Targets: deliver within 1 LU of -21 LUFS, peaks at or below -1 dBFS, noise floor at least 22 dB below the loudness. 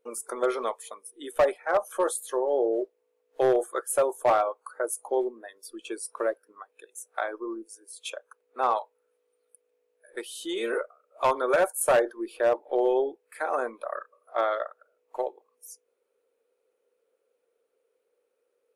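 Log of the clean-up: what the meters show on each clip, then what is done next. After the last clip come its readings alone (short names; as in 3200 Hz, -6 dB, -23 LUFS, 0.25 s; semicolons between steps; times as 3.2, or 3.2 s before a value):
clipped 0.4%; flat tops at -15.5 dBFS; loudness -28.0 LUFS; peak -15.5 dBFS; loudness target -21.0 LUFS
-> clip repair -15.5 dBFS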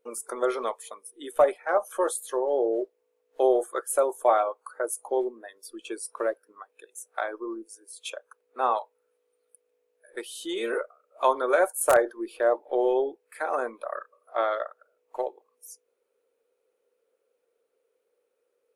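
clipped 0.0%; loudness -27.5 LUFS; peak -6.5 dBFS; loudness target -21.0 LUFS
-> gain +6.5 dB; limiter -1 dBFS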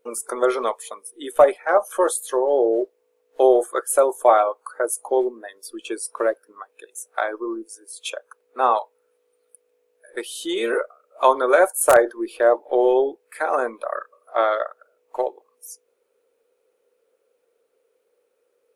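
loudness -21.0 LUFS; peak -1.0 dBFS; noise floor -69 dBFS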